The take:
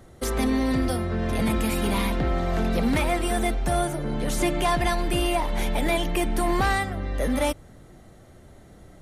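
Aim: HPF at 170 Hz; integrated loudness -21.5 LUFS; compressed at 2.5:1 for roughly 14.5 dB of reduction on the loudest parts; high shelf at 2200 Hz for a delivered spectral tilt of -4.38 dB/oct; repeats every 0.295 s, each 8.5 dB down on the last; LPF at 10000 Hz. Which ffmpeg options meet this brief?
-af "highpass=170,lowpass=10k,highshelf=f=2.2k:g=-5.5,acompressor=threshold=-44dB:ratio=2.5,aecho=1:1:295|590|885|1180:0.376|0.143|0.0543|0.0206,volume=18.5dB"

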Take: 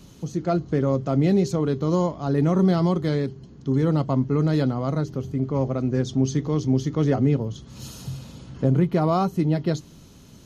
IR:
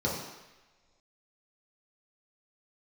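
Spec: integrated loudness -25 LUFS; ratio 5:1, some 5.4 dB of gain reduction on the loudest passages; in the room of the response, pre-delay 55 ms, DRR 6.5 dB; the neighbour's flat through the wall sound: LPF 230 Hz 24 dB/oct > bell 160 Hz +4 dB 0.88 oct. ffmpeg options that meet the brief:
-filter_complex "[0:a]acompressor=threshold=-21dB:ratio=5,asplit=2[a][b];[1:a]atrim=start_sample=2205,adelay=55[c];[b][c]afir=irnorm=-1:irlink=0,volume=-15.5dB[d];[a][d]amix=inputs=2:normalize=0,lowpass=f=230:w=0.5412,lowpass=f=230:w=1.3066,equalizer=f=160:t=o:w=0.88:g=4,volume=-1.5dB"

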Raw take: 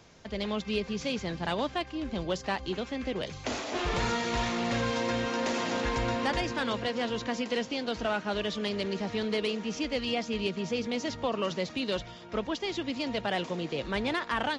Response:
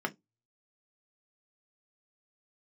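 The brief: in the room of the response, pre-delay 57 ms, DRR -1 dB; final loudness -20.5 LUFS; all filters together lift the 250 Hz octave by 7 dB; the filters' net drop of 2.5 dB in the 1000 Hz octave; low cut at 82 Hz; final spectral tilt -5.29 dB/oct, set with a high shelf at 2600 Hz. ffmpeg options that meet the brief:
-filter_complex "[0:a]highpass=82,equalizer=f=250:t=o:g=8.5,equalizer=f=1k:t=o:g=-5,highshelf=f=2.6k:g=7,asplit=2[a][b];[1:a]atrim=start_sample=2205,adelay=57[c];[b][c]afir=irnorm=-1:irlink=0,volume=-5dB[d];[a][d]amix=inputs=2:normalize=0,volume=2dB"

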